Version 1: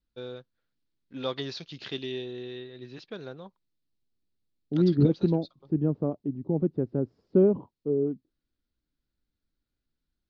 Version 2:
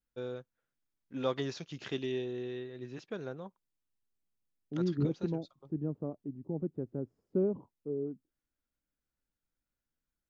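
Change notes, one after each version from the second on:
second voice −9.5 dB
master: remove low-pass with resonance 4,300 Hz, resonance Q 3.4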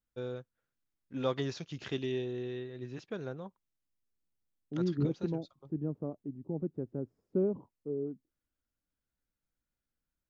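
first voice: add parametric band 76 Hz +8.5 dB 1.3 octaves

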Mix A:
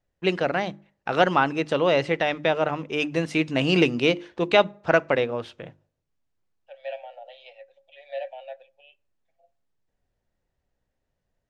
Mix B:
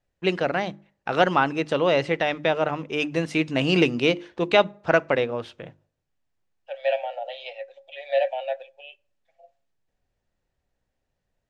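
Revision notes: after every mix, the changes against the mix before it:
second voice +10.5 dB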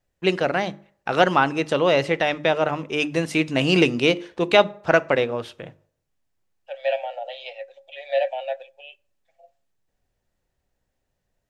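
first voice: send +9.0 dB
master: remove high-frequency loss of the air 54 metres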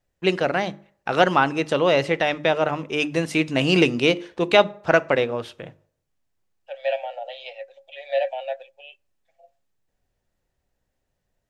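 second voice: send −8.0 dB

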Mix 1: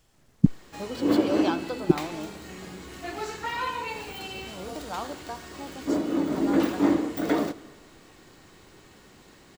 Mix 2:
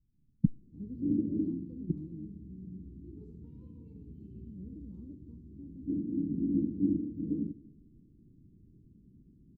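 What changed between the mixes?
speech −7.0 dB
master: add inverse Chebyshev low-pass filter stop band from 650 Hz, stop band 50 dB

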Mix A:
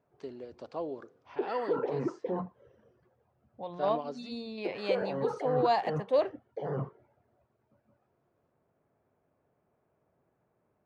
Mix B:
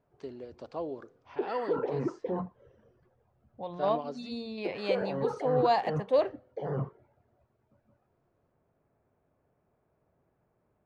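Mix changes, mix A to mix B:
second voice: send on
master: remove high-pass filter 120 Hz 6 dB per octave

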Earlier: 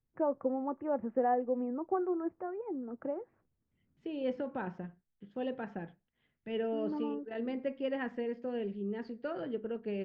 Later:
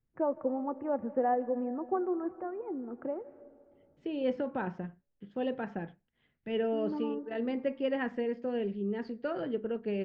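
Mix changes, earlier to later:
second voice +3.5 dB
reverb: on, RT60 2.5 s

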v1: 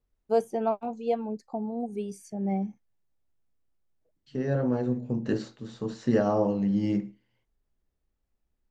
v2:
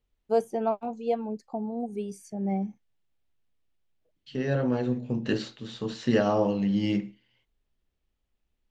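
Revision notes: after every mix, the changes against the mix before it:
second voice: add parametric band 3,100 Hz +12 dB 1.4 octaves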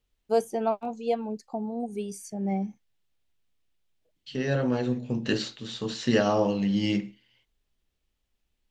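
master: add high-shelf EQ 2,600 Hz +8.5 dB

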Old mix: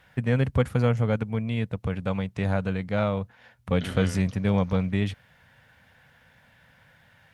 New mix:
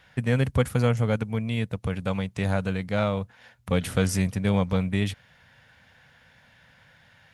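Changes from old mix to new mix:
first voice: remove low-pass filter 2,800 Hz 6 dB per octave
second voice −8.5 dB

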